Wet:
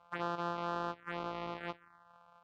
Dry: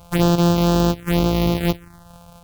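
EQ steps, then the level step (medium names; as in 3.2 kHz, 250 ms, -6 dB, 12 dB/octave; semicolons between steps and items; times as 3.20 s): band-pass filter 1.3 kHz, Q 1.9; distance through air 75 m; -7.0 dB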